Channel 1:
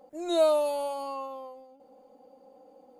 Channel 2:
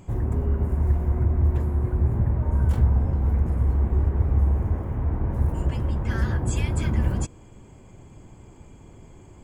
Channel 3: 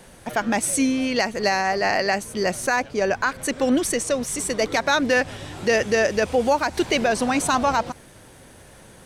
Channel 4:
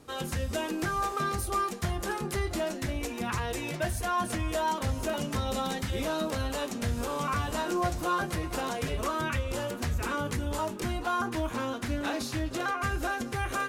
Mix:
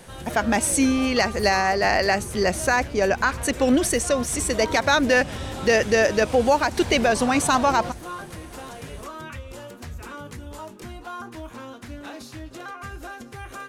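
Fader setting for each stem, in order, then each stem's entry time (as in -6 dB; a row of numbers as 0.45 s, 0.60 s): -16.0 dB, -16.5 dB, +1.0 dB, -6.0 dB; 0.00 s, 0.00 s, 0.00 s, 0.00 s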